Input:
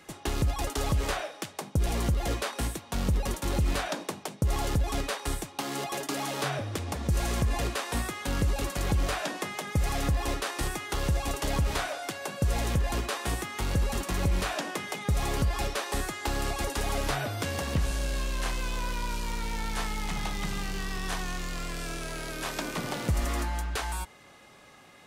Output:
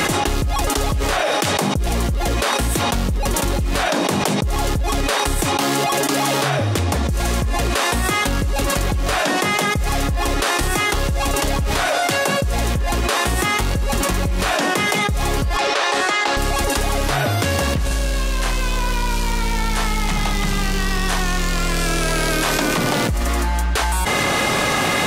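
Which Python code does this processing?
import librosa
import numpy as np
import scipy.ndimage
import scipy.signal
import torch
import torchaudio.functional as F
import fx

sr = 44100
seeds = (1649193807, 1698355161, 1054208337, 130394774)

y = fx.bandpass_edges(x, sr, low_hz=440.0, high_hz=5500.0, at=(15.57, 16.37))
y = fx.dmg_noise_colour(y, sr, seeds[0], colour='pink', level_db=-61.0, at=(22.79, 23.44), fade=0.02)
y = fx.env_flatten(y, sr, amount_pct=100)
y = F.gain(torch.from_numpy(y), 3.0).numpy()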